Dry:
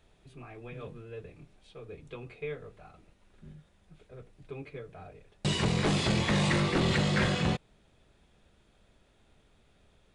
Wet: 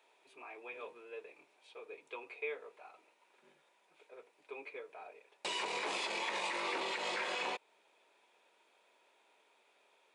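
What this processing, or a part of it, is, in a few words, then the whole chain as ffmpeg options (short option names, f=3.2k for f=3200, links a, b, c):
laptop speaker: -af "highpass=f=390:w=0.5412,highpass=f=390:w=1.3066,equalizer=f=940:t=o:w=0.24:g=11.5,equalizer=f=2.4k:t=o:w=0.31:g=8,alimiter=level_in=0.5dB:limit=-24dB:level=0:latency=1:release=173,volume=-0.5dB,volume=-3dB"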